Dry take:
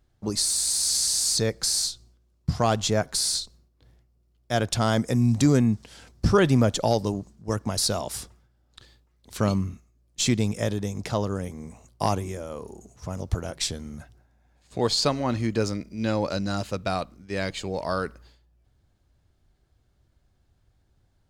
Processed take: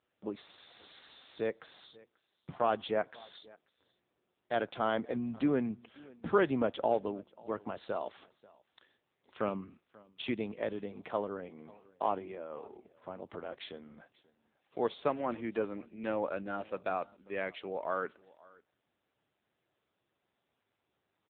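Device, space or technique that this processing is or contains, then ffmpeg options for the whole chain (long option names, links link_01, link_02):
satellite phone: -af "highpass=320,lowpass=3300,aecho=1:1:537:0.0668,volume=-5dB" -ar 8000 -c:a libopencore_amrnb -b:a 6700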